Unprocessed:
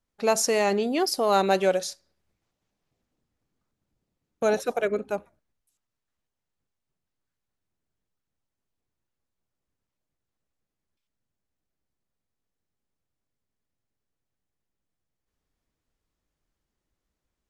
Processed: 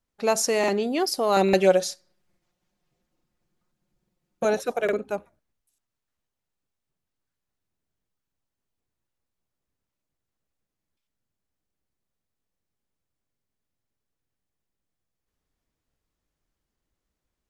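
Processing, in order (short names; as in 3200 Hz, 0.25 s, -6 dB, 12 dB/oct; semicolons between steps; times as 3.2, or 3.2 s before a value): 1.36–4.45 comb 5.6 ms, depth 92%; crackling interface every 0.85 s, samples 2048, repeat, from 0.59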